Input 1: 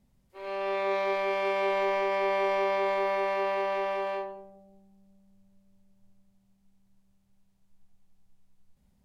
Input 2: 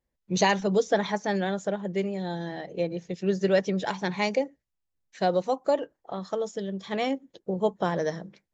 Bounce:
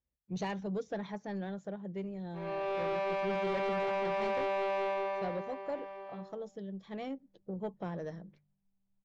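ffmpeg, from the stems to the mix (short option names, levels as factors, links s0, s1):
-filter_complex "[0:a]aemphasis=mode=reproduction:type=75kf,adelay=2000,volume=0.891,afade=t=out:st=4.83:d=0.62:silence=0.223872[s0];[1:a]highpass=61,aemphasis=mode=reproduction:type=bsi,volume=0.2[s1];[s0][s1]amix=inputs=2:normalize=0,bandreject=f=49.23:t=h:w=4,bandreject=f=98.46:t=h:w=4,bandreject=f=147.69:t=h:w=4,asoftclip=type=tanh:threshold=0.0376"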